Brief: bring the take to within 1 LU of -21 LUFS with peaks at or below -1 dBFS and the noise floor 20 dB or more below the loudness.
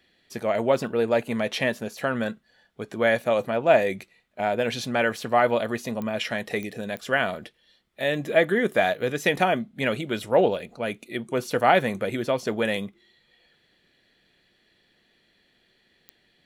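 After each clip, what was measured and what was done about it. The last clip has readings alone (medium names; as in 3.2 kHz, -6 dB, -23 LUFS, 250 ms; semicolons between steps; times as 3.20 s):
clicks found 4; loudness -25.0 LUFS; peak level -4.0 dBFS; loudness target -21.0 LUFS
-> de-click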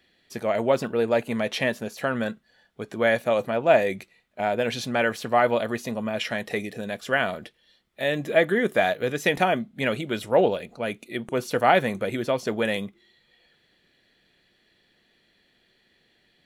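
clicks found 0; loudness -25.0 LUFS; peak level -4.0 dBFS; loudness target -21.0 LUFS
-> trim +4 dB; peak limiter -1 dBFS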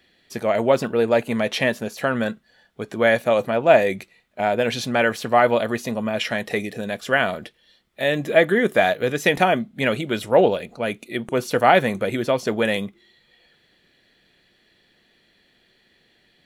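loudness -21.0 LUFS; peak level -1.0 dBFS; noise floor -62 dBFS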